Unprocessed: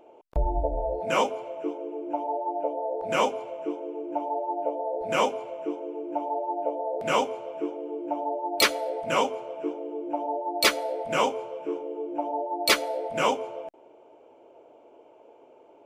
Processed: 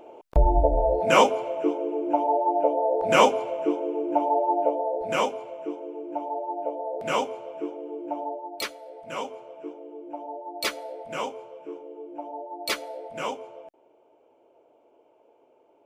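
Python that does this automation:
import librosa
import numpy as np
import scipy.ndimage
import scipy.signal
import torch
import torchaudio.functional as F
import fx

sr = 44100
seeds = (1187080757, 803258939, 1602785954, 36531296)

y = fx.gain(x, sr, db=fx.line((4.55, 6.5), (5.27, -1.5), (8.24, -1.5), (8.77, -14.0), (9.32, -7.0)))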